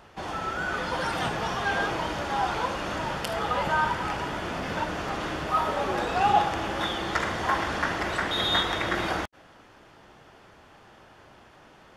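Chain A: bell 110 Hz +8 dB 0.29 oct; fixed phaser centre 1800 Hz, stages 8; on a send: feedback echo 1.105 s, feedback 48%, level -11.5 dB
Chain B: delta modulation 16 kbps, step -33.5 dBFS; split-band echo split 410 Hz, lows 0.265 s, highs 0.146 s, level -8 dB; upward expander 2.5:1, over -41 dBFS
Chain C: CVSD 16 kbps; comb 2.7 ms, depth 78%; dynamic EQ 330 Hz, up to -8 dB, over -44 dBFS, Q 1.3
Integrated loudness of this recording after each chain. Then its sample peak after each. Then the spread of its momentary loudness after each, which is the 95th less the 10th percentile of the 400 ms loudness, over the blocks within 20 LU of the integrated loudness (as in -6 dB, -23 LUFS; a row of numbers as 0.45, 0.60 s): -30.0, -36.0, -28.0 LUFS; -10.5, -16.5, -9.5 dBFS; 17, 10, 6 LU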